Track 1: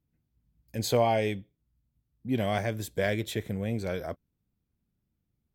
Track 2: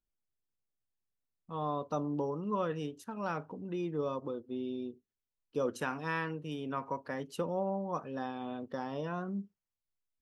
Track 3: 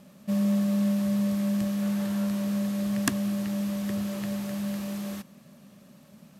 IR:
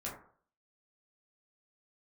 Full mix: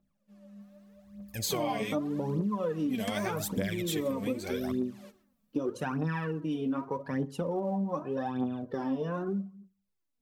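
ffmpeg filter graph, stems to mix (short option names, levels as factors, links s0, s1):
-filter_complex "[0:a]deesser=0.65,highshelf=f=2900:g=11.5,adelay=600,volume=0.531[s0];[1:a]equalizer=f=180:w=0.38:g=11.5,volume=0.668,asplit=3[s1][s2][s3];[s2]volume=0.282[s4];[2:a]highshelf=f=8000:g=-9.5,volume=0.188,asplit=2[s5][s6];[s6]volume=0.141[s7];[s3]apad=whole_len=282057[s8];[s5][s8]sidechaingate=range=0.0501:threshold=0.00126:ratio=16:detection=peak[s9];[3:a]atrim=start_sample=2205[s10];[s4][s7]amix=inputs=2:normalize=0[s11];[s11][s10]afir=irnorm=-1:irlink=0[s12];[s0][s1][s9][s12]amix=inputs=4:normalize=0,aphaser=in_gain=1:out_gain=1:delay=4.6:decay=0.68:speed=0.83:type=triangular,acompressor=threshold=0.0398:ratio=5"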